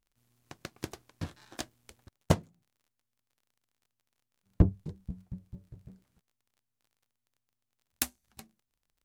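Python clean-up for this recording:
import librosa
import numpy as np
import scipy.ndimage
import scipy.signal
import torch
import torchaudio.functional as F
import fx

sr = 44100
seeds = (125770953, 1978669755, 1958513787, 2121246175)

y = fx.fix_declip(x, sr, threshold_db=-11.5)
y = fx.fix_declick_ar(y, sr, threshold=6.5)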